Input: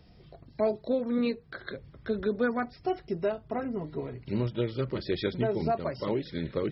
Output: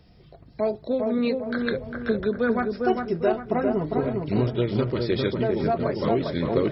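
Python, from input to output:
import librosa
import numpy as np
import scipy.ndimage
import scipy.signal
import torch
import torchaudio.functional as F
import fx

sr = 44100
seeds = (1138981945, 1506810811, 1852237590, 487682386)

p1 = fx.rider(x, sr, range_db=5, speed_s=0.5)
p2 = p1 + fx.echo_wet_lowpass(p1, sr, ms=402, feedback_pct=41, hz=1800.0, wet_db=-3.5, dry=0)
y = p2 * librosa.db_to_amplitude(5.0)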